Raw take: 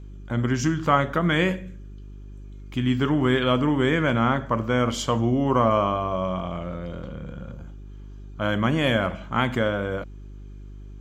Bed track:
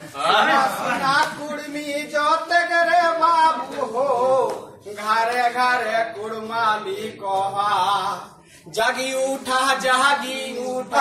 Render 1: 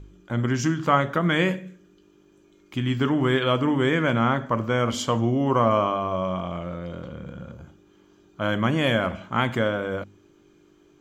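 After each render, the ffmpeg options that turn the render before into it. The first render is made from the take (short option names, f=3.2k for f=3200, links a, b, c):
-af "bandreject=f=50:t=h:w=4,bandreject=f=100:t=h:w=4,bandreject=f=150:t=h:w=4,bandreject=f=200:t=h:w=4,bandreject=f=250:t=h:w=4"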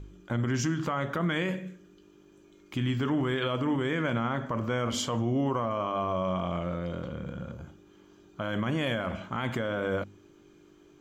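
-af "acompressor=threshold=-23dB:ratio=4,alimiter=limit=-20.5dB:level=0:latency=1:release=23"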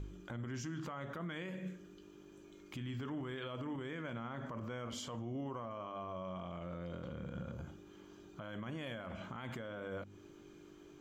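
-af "acompressor=threshold=-40dB:ratio=1.5,alimiter=level_in=11dB:limit=-24dB:level=0:latency=1:release=126,volume=-11dB"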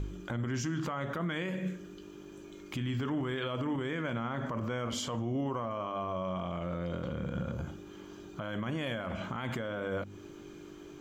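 -af "volume=8.5dB"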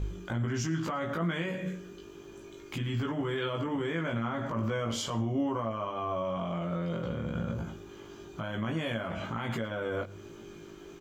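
-filter_complex "[0:a]asplit=2[a][b];[b]adelay=18,volume=-2dB[c];[a][c]amix=inputs=2:normalize=0,aecho=1:1:109:0.0794"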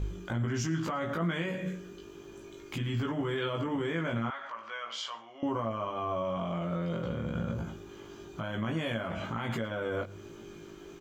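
-filter_complex "[0:a]asettb=1/sr,asplit=3[a][b][c];[a]atrim=end=4.304[d];[b]atrim=start=4.3:end=5.43,asetpts=PTS-STARTPTS,afade=t=in:d=0.004:c=qsin,afade=t=out:st=1.126:d=0.004:c=qsin,asuperpass=centerf=2200:order=4:qfactor=0.58[e];[c]atrim=start=5.426[f];[d][e]acrossfade=d=0.004:c1=hsin:c2=qsin[g];[g][f]acrossfade=d=0.004:c1=qsin:c2=hsin"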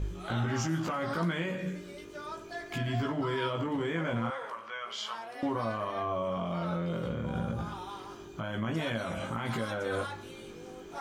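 -filter_complex "[1:a]volume=-23.5dB[a];[0:a][a]amix=inputs=2:normalize=0"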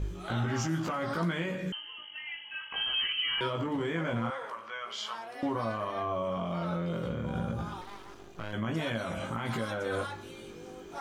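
-filter_complex "[0:a]asettb=1/sr,asplit=3[a][b][c];[a]atrim=end=1.724[d];[b]atrim=start=1.72:end=3.41,asetpts=PTS-STARTPTS,afade=t=in:d=0.004:c=qsin,afade=t=out:st=1.686:d=0.004:c=qsin,lowpass=f=2.8k:t=q:w=0.5098,lowpass=f=2.8k:t=q:w=0.6013,lowpass=f=2.8k:t=q:w=0.9,lowpass=f=2.8k:t=q:w=2.563,afreqshift=-3300[e];[c]atrim=start=3.406[f];[d][e]acrossfade=d=0.004:c1=hsin:c2=qsin[g];[g][f]acrossfade=d=0.004:c1=qsin:c2=hsin,asettb=1/sr,asplit=3[h][i][j];[h]atrim=end=7.814[k];[i]atrim=start=7.81:end=8.53,asetpts=PTS-STARTPTS,afade=t=in:d=0.004:c=qsin,afade=t=out:st=0.716:d=0.004:c=qsin,aeval=exprs='max(val(0),0)':c=same[l];[j]atrim=start=8.526[m];[k][l]acrossfade=d=0.004:c1=hsin:c2=qsin[n];[n][m]acrossfade=d=0.004:c1=qsin:c2=hsin"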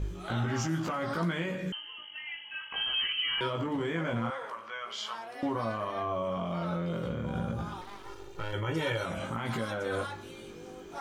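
-filter_complex "[0:a]asettb=1/sr,asplit=3[a][b][c];[a]atrim=end=8.044[d];[b]atrim=start=8.04:end=9.06,asetpts=PTS-STARTPTS,afade=t=in:d=0.004:c=qsin,afade=t=out:st=1.016:d=0.004:c=qsin,aecho=1:1:2.2:0.98,atrim=end_sample=44982[e];[c]atrim=start=9.056[f];[d][e]acrossfade=d=0.004:c1=hsin:c2=qsin[g];[g][f]acrossfade=d=0.004:c1=qsin:c2=hsin"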